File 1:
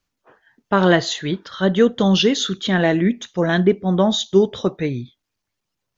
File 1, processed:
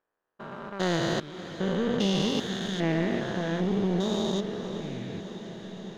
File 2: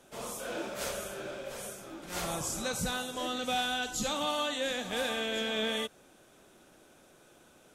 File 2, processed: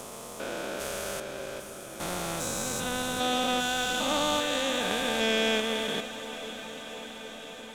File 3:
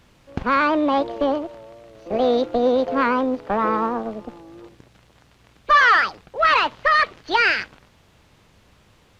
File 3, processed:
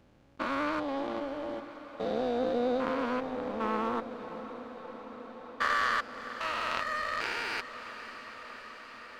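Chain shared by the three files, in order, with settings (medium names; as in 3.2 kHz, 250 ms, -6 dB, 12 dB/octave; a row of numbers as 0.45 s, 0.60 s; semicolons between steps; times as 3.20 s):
spectrogram pixelated in time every 400 ms; power-law waveshaper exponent 1.4; echo that smears into a reverb 588 ms, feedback 78%, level -13.5 dB; peak normalisation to -12 dBFS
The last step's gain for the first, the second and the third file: -2.5 dB, +10.5 dB, -3.5 dB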